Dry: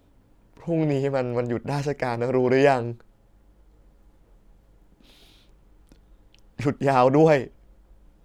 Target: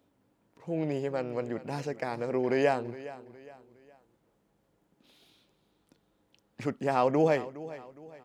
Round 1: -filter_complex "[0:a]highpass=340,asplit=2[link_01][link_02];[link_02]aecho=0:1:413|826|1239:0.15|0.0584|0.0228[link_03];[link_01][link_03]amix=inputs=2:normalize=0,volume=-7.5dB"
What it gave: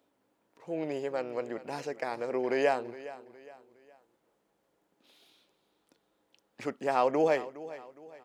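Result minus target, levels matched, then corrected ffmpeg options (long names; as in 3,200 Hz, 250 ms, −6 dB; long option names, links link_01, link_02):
125 Hz band −10.5 dB
-filter_complex "[0:a]highpass=150,asplit=2[link_01][link_02];[link_02]aecho=0:1:413|826|1239:0.15|0.0584|0.0228[link_03];[link_01][link_03]amix=inputs=2:normalize=0,volume=-7.5dB"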